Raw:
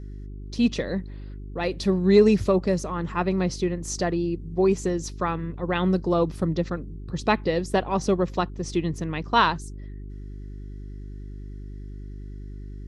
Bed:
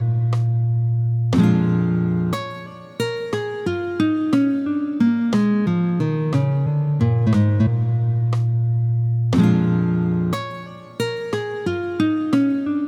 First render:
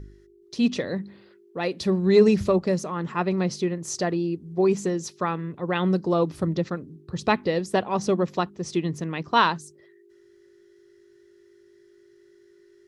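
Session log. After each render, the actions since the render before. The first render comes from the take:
hum removal 50 Hz, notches 6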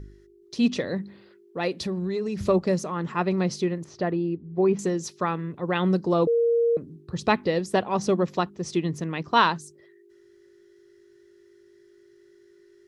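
0:01.76–0:02.45: downward compressor 8 to 1, threshold −25 dBFS
0:03.84–0:04.79: high-frequency loss of the air 310 metres
0:06.27–0:06.77: beep over 467 Hz −18 dBFS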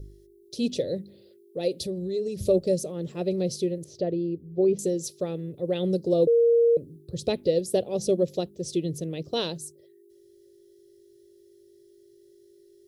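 drawn EQ curve 140 Hz 0 dB, 210 Hz −7 dB, 550 Hz +4 dB, 1,000 Hz −25 dB, 1,800 Hz −19 dB, 3,600 Hz −1 dB, 6,700 Hz 0 dB, 11,000 Hz +12 dB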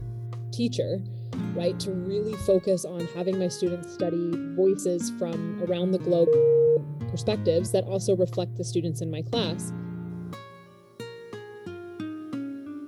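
mix in bed −16 dB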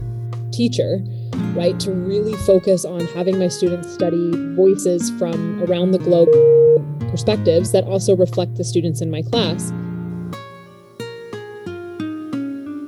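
level +9 dB
brickwall limiter −3 dBFS, peak gain reduction 1 dB

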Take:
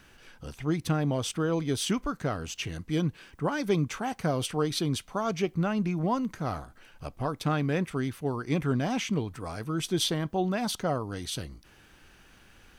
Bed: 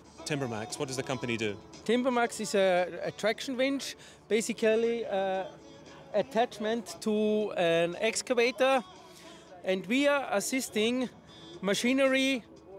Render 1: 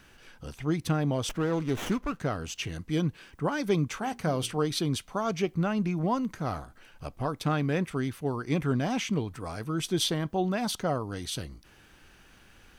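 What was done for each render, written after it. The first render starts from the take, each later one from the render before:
0:01.29–0:02.20: windowed peak hold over 9 samples
0:03.97–0:04.58: mains-hum notches 60/120/180/240/300/360/420 Hz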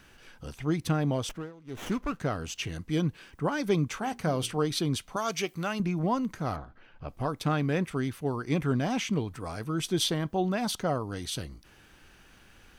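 0:01.16–0:02.00: duck −23 dB, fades 0.37 s
0:05.16–0:05.80: spectral tilt +3 dB per octave
0:06.56–0:07.09: high-frequency loss of the air 260 metres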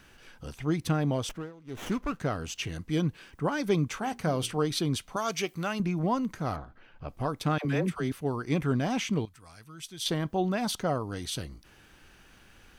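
0:07.58–0:08.12: all-pass dispersion lows, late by 71 ms, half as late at 590 Hz
0:09.25–0:10.06: guitar amp tone stack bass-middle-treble 5-5-5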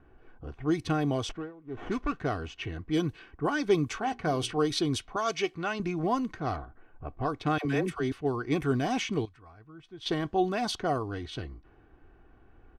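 low-pass that shuts in the quiet parts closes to 810 Hz, open at −23 dBFS
comb filter 2.7 ms, depth 49%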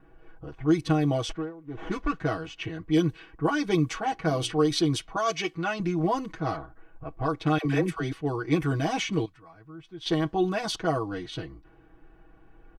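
comb filter 6.2 ms, depth 91%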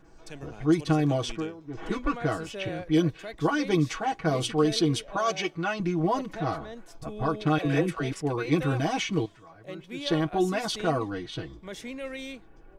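mix in bed −11.5 dB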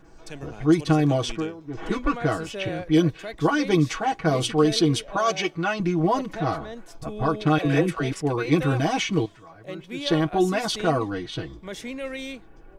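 level +4 dB

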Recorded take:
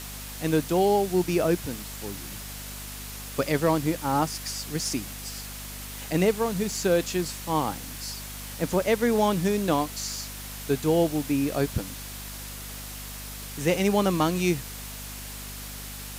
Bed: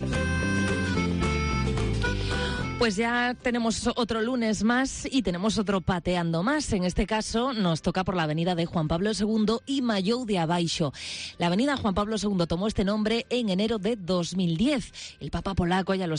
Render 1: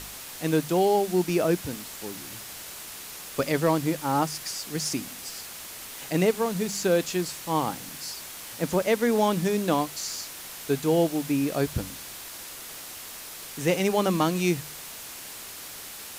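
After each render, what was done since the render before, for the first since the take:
hum removal 50 Hz, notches 5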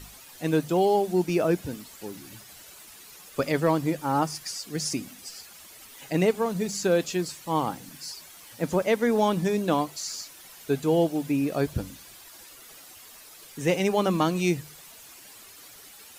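broadband denoise 11 dB, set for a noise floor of −41 dBFS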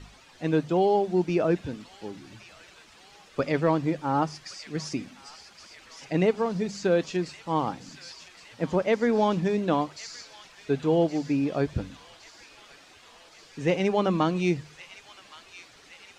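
high-frequency loss of the air 130 metres
delay with a high-pass on its return 1,117 ms, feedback 65%, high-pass 2,300 Hz, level −9.5 dB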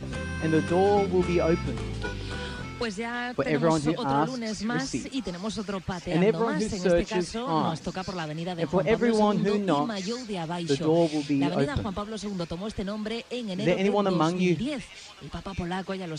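mix in bed −6.5 dB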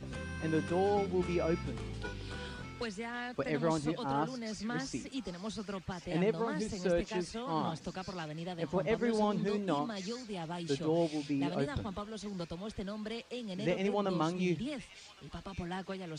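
level −8.5 dB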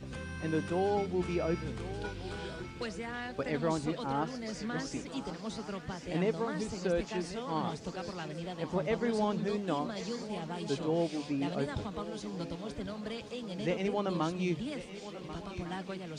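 feedback echo with a long and a short gap by turns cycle 1,452 ms, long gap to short 3 to 1, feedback 49%, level −14 dB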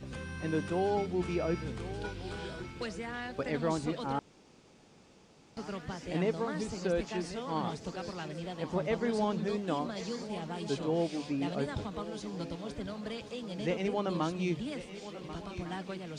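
0:04.19–0:05.57: fill with room tone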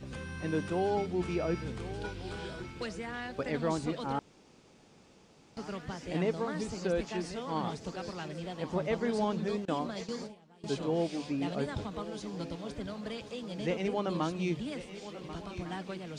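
0:09.65–0:10.64: noise gate with hold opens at −27 dBFS, closes at −37 dBFS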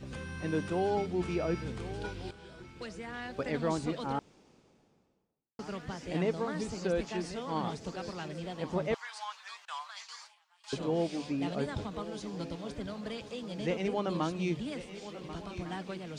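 0:02.31–0:03.42: fade in, from −14 dB
0:04.03–0:05.59: fade out and dull
0:08.94–0:10.73: Butterworth high-pass 950 Hz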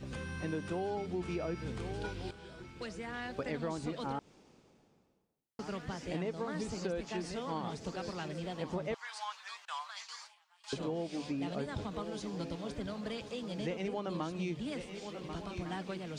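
downward compressor, threshold −33 dBFS, peak gain reduction 8 dB

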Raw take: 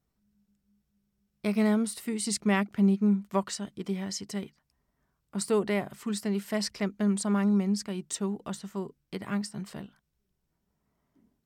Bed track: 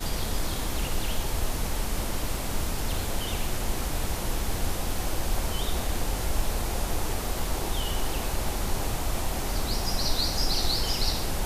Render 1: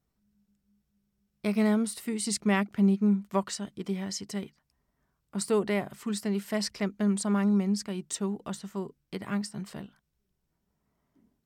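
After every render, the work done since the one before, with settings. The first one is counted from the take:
no processing that can be heard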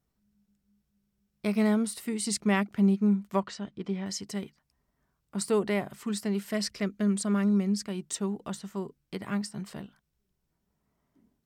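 0:03.40–0:04.06: high-frequency loss of the air 130 metres
0:06.50–0:07.88: parametric band 870 Hz −12 dB 0.28 octaves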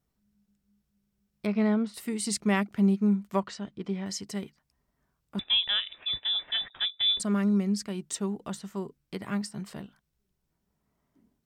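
0:01.46–0:01.94: high-frequency loss of the air 190 metres
0:05.39–0:07.20: voice inversion scrambler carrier 3,700 Hz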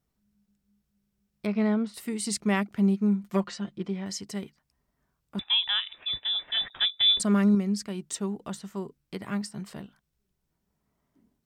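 0:03.23–0:03.87: comb filter 5.7 ms, depth 79%
0:05.42–0:05.93: low shelf with overshoot 670 Hz −8 dB, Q 3
0:06.57–0:07.55: clip gain +4 dB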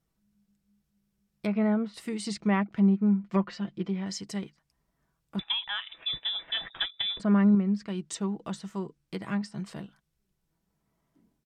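comb filter 6.1 ms, depth 33%
treble cut that deepens with the level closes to 2,000 Hz, closed at −23 dBFS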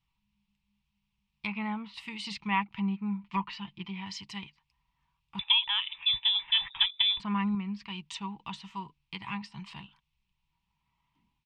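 drawn EQ curve 100 Hz 0 dB, 610 Hz −23 dB, 920 Hz +8 dB, 1,500 Hz −9 dB, 2,600 Hz +11 dB, 7,000 Hz −10 dB, 10,000 Hz −15 dB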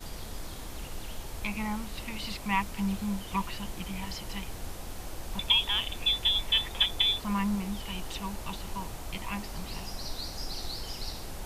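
mix in bed track −11 dB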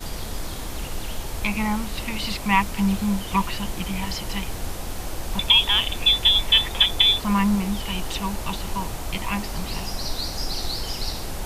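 level +9 dB
brickwall limiter −3 dBFS, peak gain reduction 2 dB

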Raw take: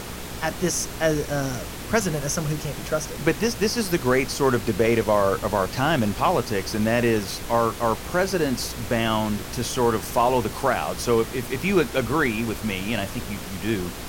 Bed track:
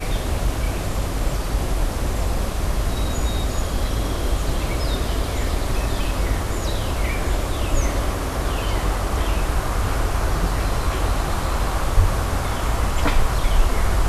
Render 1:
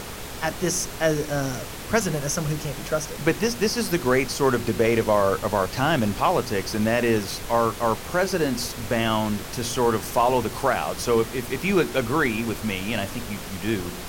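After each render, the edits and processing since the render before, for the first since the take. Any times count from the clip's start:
hum removal 60 Hz, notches 6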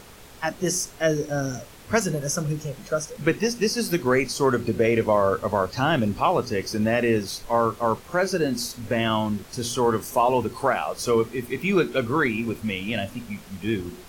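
noise reduction from a noise print 11 dB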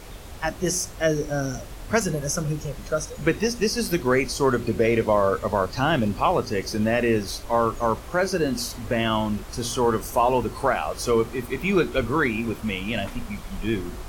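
mix in bed track −18 dB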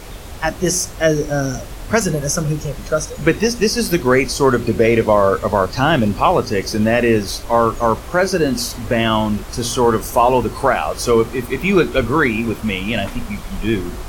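level +7 dB
brickwall limiter −1 dBFS, peak gain reduction 2 dB

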